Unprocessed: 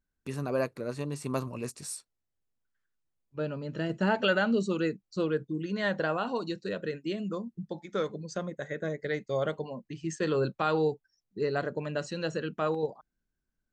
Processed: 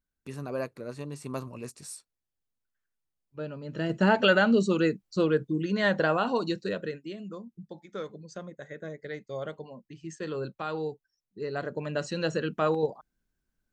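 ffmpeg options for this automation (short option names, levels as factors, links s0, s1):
-af "volume=5.01,afade=t=in:st=3.61:d=0.41:silence=0.398107,afade=t=out:st=6.56:d=0.53:silence=0.298538,afade=t=in:st=11.38:d=0.8:silence=0.334965"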